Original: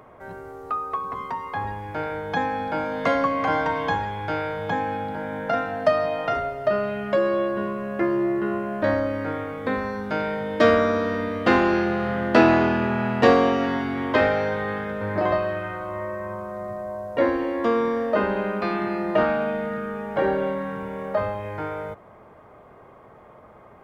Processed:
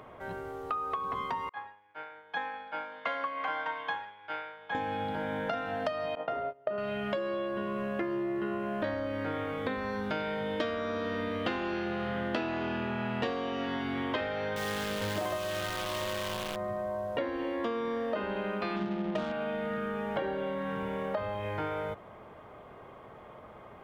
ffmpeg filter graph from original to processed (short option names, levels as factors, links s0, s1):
-filter_complex "[0:a]asettb=1/sr,asplit=3[s0][s1][s2];[s0]atrim=end=1.494[s3];[s1]atrim=start=1.49:end=4.75,asetpts=PTS-STARTPTS,afade=t=in:d=0.004:c=qsin,afade=t=out:st=3.256:d=0.004:c=qsin,agate=range=0.0224:threshold=0.0891:ratio=3:release=100:detection=peak,bandpass=f=1500:t=q:w=0.91[s4];[s2]atrim=start=4.746[s5];[s3][s4]acrossfade=d=0.004:c1=hsin:c2=qsin[s6];[s6][s5]acrossfade=d=0.004:c1=qsin:c2=hsin,asettb=1/sr,asplit=3[s7][s8][s9];[s7]atrim=end=6.154[s10];[s8]atrim=start=6.15:end=6.78,asetpts=PTS-STARTPTS,afade=t=in:d=0.004:c=qsin,afade=t=out:st=0.626:d=0.004:c=qsin,agate=range=0.0708:threshold=0.0355:ratio=16:release=100:detection=peak,bandpass=f=490:t=q:w=0.58[s11];[s9]atrim=start=6.776[s12];[s10][s11]acrossfade=d=0.004:c1=hsin:c2=qsin[s13];[s13][s12]acrossfade=d=0.004:c1=qsin:c2=hsin,asettb=1/sr,asplit=3[s14][s15][s16];[s14]atrim=end=14.564[s17];[s15]atrim=start=14.56:end=16.56,asetpts=PTS-STARTPTS,afade=t=in:d=0.004:c=qsin,afade=t=out:st=1.996:d=0.004:c=qsin,bandreject=f=60:t=h:w=6,bandreject=f=120:t=h:w=6,bandreject=f=180:t=h:w=6,bandreject=f=240:t=h:w=6,bandreject=f=300:t=h:w=6,bandreject=f=360:t=h:w=6,bandreject=f=420:t=h:w=6,bandreject=f=480:t=h:w=6,acrusher=bits=6:dc=4:mix=0:aa=0.000001[s18];[s16]atrim=start=16.556[s19];[s17][s18]acrossfade=d=0.004:c1=hsin:c2=qsin[s20];[s20][s19]acrossfade=d=0.004:c1=qsin:c2=hsin,asettb=1/sr,asplit=3[s21][s22][s23];[s21]atrim=end=18.764[s24];[s22]atrim=start=18.76:end=19.32,asetpts=PTS-STARTPTS,afade=t=in:d=0.004:c=qsin,afade=t=out:st=0.556:d=0.004:c=qsin,equalizer=f=190:t=o:w=0.74:g=9,adynamicsmooth=sensitivity=1.5:basefreq=550[s25];[s23]atrim=start=19.316[s26];[s24][s25]acrossfade=d=0.004:c1=hsin:c2=qsin[s27];[s27][s26]acrossfade=d=0.004:c1=qsin:c2=hsin,equalizer=f=3200:w=1.9:g=8,acompressor=threshold=0.0398:ratio=12,volume=0.841"